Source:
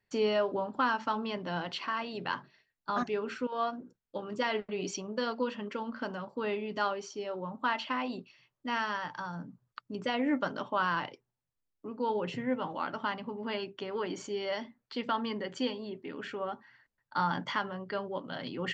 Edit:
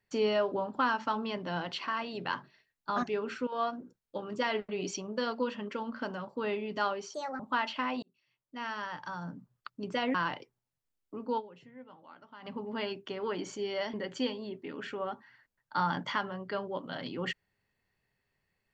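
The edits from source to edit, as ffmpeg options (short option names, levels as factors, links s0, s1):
-filter_complex "[0:a]asplit=8[s0][s1][s2][s3][s4][s5][s6][s7];[s0]atrim=end=7.144[s8];[s1]atrim=start=7.14:end=7.51,asetpts=PTS-STARTPTS,asetrate=63945,aresample=44100,atrim=end_sample=11253,asetpts=PTS-STARTPTS[s9];[s2]atrim=start=7.506:end=8.14,asetpts=PTS-STARTPTS,afade=t=out:st=0.63:d=0.004:c=hsin[s10];[s3]atrim=start=8.14:end=10.262,asetpts=PTS-STARTPTS,afade=t=in:d=1.22[s11];[s4]atrim=start=10.858:end=12.32,asetpts=PTS-STARTPTS,afade=t=out:st=1.232:d=0.23:c=exp:silence=0.11885[s12];[s5]atrim=start=12.32:end=12.95,asetpts=PTS-STARTPTS,volume=0.119[s13];[s6]atrim=start=12.95:end=14.652,asetpts=PTS-STARTPTS,afade=t=in:d=0.23:c=exp:silence=0.11885[s14];[s7]atrim=start=15.338[s15];[s8][s9]acrossfade=d=0.004:c1=hsin:c2=hsin[s16];[s10][s11]concat=n=2:v=0:a=1[s17];[s16][s17]acrossfade=d=0.004:c1=hsin:c2=hsin[s18];[s12][s13][s14]concat=n=3:v=0:a=1[s19];[s18][s19]acrossfade=d=0.004:c1=hsin:c2=hsin[s20];[s20][s15]acrossfade=d=0.004:c1=hsin:c2=hsin"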